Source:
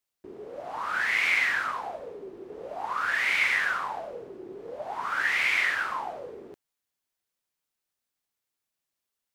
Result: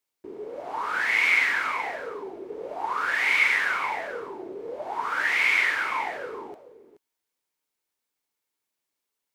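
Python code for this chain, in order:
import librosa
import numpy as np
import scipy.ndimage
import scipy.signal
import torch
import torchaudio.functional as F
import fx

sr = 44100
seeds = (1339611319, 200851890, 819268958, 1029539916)

p1 = fx.low_shelf(x, sr, hz=340.0, db=-4.5)
p2 = fx.small_body(p1, sr, hz=(300.0, 430.0, 910.0, 2200.0), ring_ms=25, db=6)
p3 = p2 + fx.echo_single(p2, sr, ms=425, db=-13.0, dry=0)
y = p3 * 10.0 ** (1.0 / 20.0)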